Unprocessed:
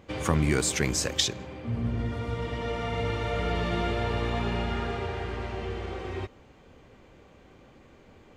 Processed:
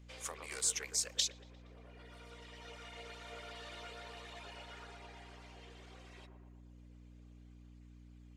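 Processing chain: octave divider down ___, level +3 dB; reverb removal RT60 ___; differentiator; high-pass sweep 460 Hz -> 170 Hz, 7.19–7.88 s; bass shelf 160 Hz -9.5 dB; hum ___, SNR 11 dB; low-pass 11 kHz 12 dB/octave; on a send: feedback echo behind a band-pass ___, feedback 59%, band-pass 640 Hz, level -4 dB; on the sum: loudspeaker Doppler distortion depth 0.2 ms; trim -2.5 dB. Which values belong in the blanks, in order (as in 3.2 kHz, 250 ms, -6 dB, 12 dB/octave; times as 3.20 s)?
1 oct, 1.5 s, 60 Hz, 117 ms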